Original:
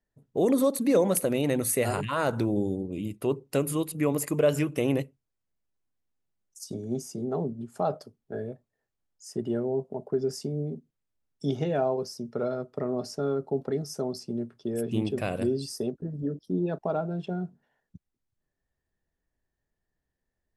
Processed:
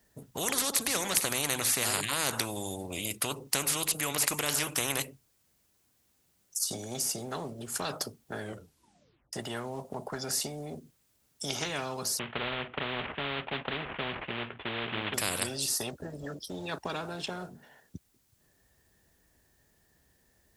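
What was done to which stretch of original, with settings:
8.4 tape stop 0.93 s
12.19–15.14 CVSD 16 kbps
whole clip: HPF 47 Hz; high shelf 4000 Hz +9 dB; spectral compressor 4:1; gain -2.5 dB

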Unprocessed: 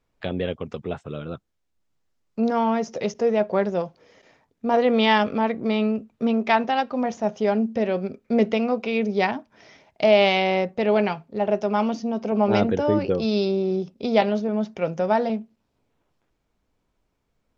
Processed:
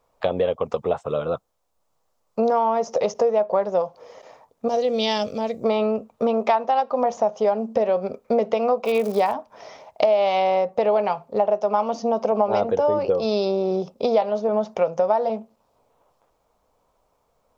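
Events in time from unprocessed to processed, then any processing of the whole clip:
4.68–5.64 EQ curve 100 Hz 0 dB, 650 Hz -13 dB, 1000 Hz -23 dB, 6400 Hz +8 dB
8.84–9.32 crackle 190/s -30 dBFS
whole clip: band shelf 750 Hz +13.5 dB; compressor 5:1, threshold -18 dBFS; high shelf 4900 Hz +11 dB

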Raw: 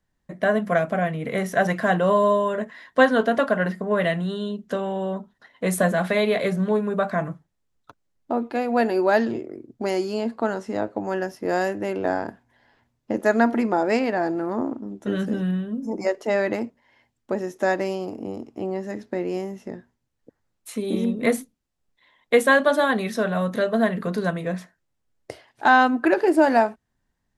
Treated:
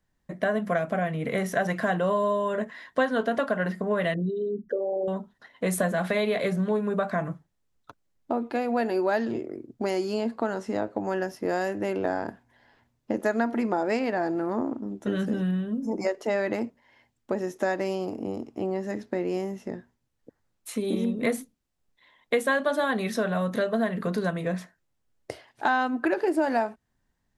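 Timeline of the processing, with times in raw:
4.14–5.08 formant sharpening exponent 3
whole clip: compressor 2.5:1, threshold -24 dBFS

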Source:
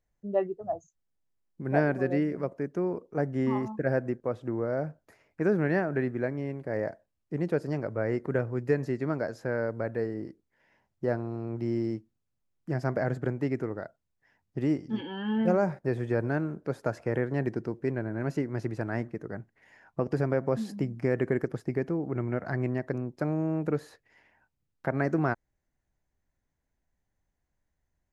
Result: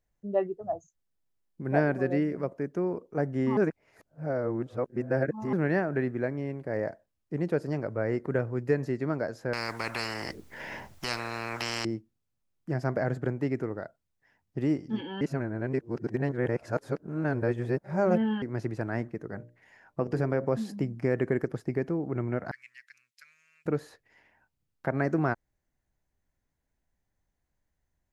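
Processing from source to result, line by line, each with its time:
3.57–5.53 reverse
9.53–11.85 spectral compressor 10:1
15.21–18.42 reverse
19.3–20.45 notches 60/120/180/240/300/360/420/480/540/600 Hz
22.51–23.66 inverse Chebyshev high-pass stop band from 830 Hz, stop band 50 dB

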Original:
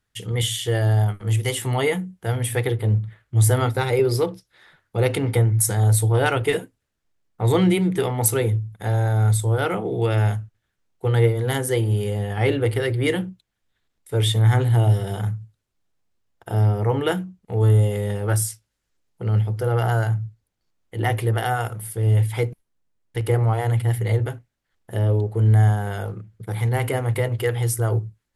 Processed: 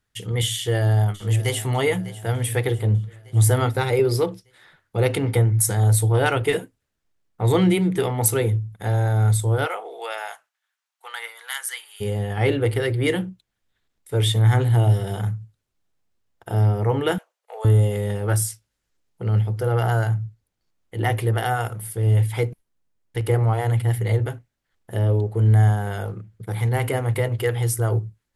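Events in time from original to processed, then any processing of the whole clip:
0.54–1.66 echo throw 0.6 s, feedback 55%, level -16 dB
9.65–12 HPF 540 Hz -> 1400 Hz 24 dB/oct
17.18–17.65 steep high-pass 520 Hz 48 dB/oct

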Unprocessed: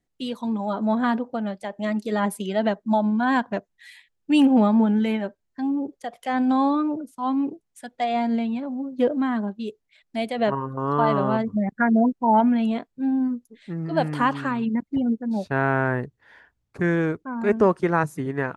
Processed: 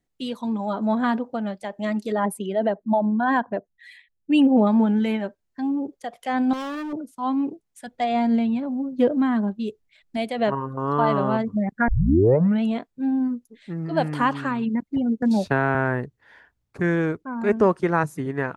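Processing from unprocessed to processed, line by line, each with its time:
2.12–4.67 formant sharpening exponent 1.5
6.53–6.93 hard clip -29 dBFS
7.87–10.17 low shelf 180 Hz +9 dB
11.88 tape start 0.74 s
15.22–15.75 three-band squash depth 100%

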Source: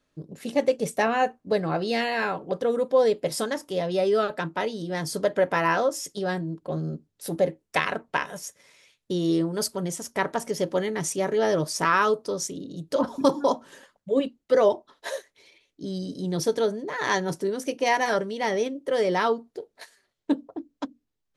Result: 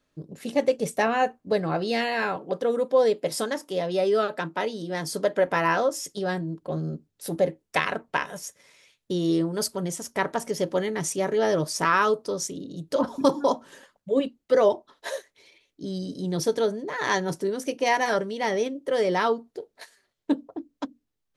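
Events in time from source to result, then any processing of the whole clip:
2.36–5.47 HPF 160 Hz

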